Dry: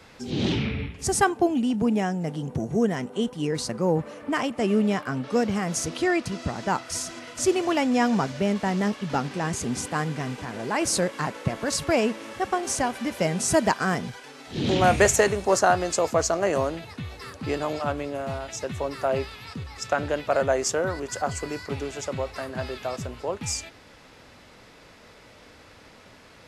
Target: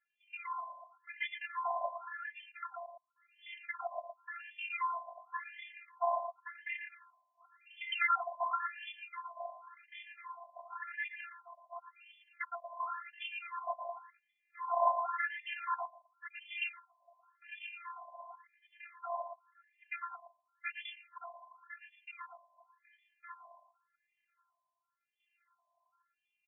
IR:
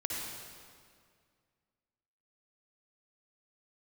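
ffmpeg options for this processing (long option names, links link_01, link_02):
-af "afftfilt=real='real(if(lt(b,736),b+184*(1-2*mod(floor(b/184),2)),b),0)':imag='imag(if(lt(b,736),b+184*(1-2*mod(floor(b/184),2)),b),0)':win_size=2048:overlap=0.75,bandreject=frequency=50:width_type=h:width=6,bandreject=frequency=100:width_type=h:width=6,bandreject=frequency=150:width_type=h:width=6,bandreject=frequency=200:width_type=h:width=6,bandreject=frequency=250:width_type=h:width=6,bandreject=frequency=300:width_type=h:width=6,bandreject=frequency=350:width_type=h:width=6,bandreject=frequency=400:width_type=h:width=6,bandreject=frequency=450:width_type=h:width=6,afwtdn=0.0398,adynamicequalizer=threshold=0.00355:dfrequency=1200:dqfactor=1.7:tfrequency=1200:tqfactor=1.7:attack=5:release=100:ratio=0.375:range=2.5:mode=cutabove:tftype=bell,afftfilt=real='hypot(re,im)*cos(2*PI*random(0))':imag='hypot(re,im)*sin(2*PI*random(1))':win_size=512:overlap=0.75,acrusher=samples=18:mix=1:aa=0.000001:lfo=1:lforange=28.8:lforate=0.23,afftfilt=real='hypot(re,im)*cos(PI*b)':imag='0':win_size=512:overlap=0.75,aecho=1:1:114:0.398,afftfilt=real='re*between(b*sr/1024,750*pow(2500/750,0.5+0.5*sin(2*PI*0.92*pts/sr))/1.41,750*pow(2500/750,0.5+0.5*sin(2*PI*0.92*pts/sr))*1.41)':imag='im*between(b*sr/1024,750*pow(2500/750,0.5+0.5*sin(2*PI*0.92*pts/sr))/1.41,750*pow(2500/750,0.5+0.5*sin(2*PI*0.92*pts/sr))*1.41)':win_size=1024:overlap=0.75,volume=2.5dB"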